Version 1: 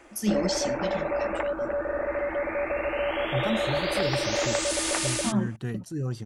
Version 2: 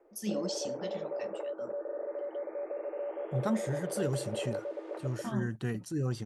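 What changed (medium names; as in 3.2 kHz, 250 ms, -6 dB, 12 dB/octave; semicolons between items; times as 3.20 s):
first voice -8.0 dB; background: add ladder band-pass 470 Hz, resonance 70%; master: add bass shelf 120 Hz -5 dB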